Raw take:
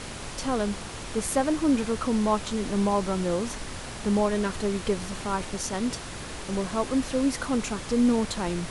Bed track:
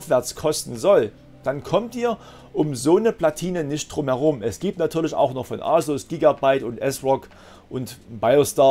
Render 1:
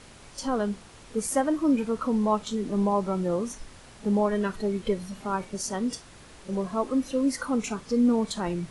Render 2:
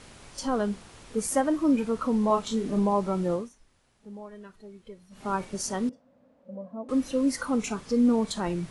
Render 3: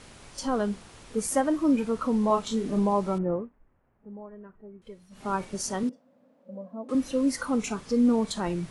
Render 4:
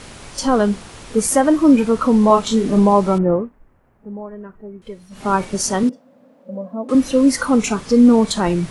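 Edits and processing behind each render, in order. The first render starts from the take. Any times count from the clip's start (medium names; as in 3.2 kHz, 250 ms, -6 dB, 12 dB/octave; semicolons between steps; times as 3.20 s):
noise print and reduce 12 dB
2.27–2.79 s: doubling 31 ms -5 dB; 3.32–5.28 s: dip -18.5 dB, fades 0.18 s; 5.89–6.89 s: two resonant band-passes 370 Hz, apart 1.1 oct
3.18–4.82 s: Gaussian low-pass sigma 5 samples; 5.83–6.95 s: Chebyshev high-pass 190 Hz
trim +11.5 dB; peak limiter -3 dBFS, peak gain reduction 2.5 dB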